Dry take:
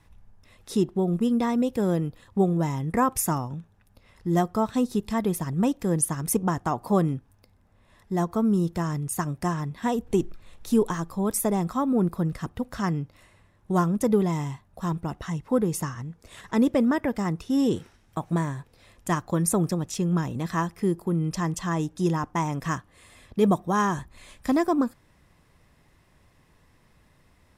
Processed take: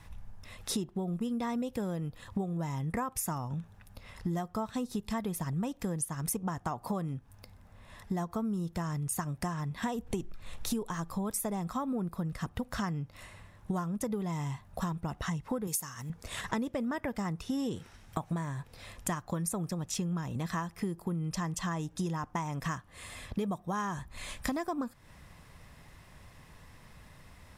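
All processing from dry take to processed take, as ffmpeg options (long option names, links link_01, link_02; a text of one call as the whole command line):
ffmpeg -i in.wav -filter_complex "[0:a]asettb=1/sr,asplit=3[link_01][link_02][link_03];[link_01]atrim=end=15.674[link_04];[link_02]atrim=start=15.67:end=16.1,asetpts=PTS-STARTPTS,afade=type=in:duration=0.004:curve=qsin,afade=type=out:start_time=0.426:duration=0.004:curve=qsin,highpass=frequency=210:poles=1,aemphasis=mode=production:type=75fm[link_05];[link_03]atrim=start=16.096[link_06];[link_04][link_05]acrossfade=duration=0.004:curve1=hsin:curve2=qsin[link_07];[link_07][link_06]acrossfade=duration=0.004:curve1=qsin:curve2=hsin,equalizer=frequency=340:width=1.4:gain=-6,acompressor=threshold=-38dB:ratio=10,volume=7dB" out.wav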